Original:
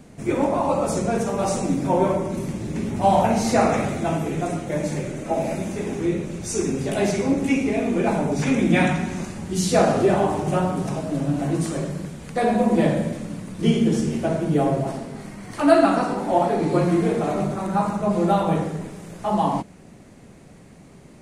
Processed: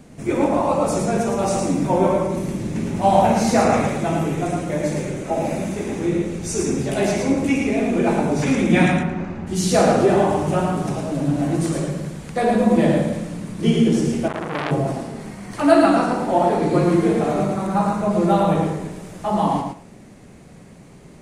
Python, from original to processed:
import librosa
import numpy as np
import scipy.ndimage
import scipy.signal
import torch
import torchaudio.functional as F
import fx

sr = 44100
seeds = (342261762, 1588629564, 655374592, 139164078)

y = fx.lowpass(x, sr, hz=2100.0, slope=12, at=(8.91, 9.46), fade=0.02)
y = fx.echo_feedback(y, sr, ms=111, feedback_pct=16, wet_db=-4.5)
y = fx.transformer_sat(y, sr, knee_hz=2100.0, at=(14.28, 14.71))
y = y * librosa.db_to_amplitude(1.0)